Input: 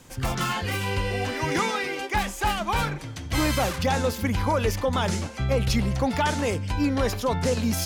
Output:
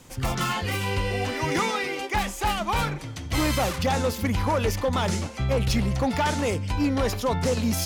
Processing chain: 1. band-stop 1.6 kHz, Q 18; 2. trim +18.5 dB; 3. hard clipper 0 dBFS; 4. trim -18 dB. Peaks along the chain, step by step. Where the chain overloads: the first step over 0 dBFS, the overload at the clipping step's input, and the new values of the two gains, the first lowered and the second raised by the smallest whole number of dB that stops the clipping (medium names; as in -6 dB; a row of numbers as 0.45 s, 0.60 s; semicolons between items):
-13.5 dBFS, +5.0 dBFS, 0.0 dBFS, -18.0 dBFS; step 2, 5.0 dB; step 2 +13.5 dB, step 4 -13 dB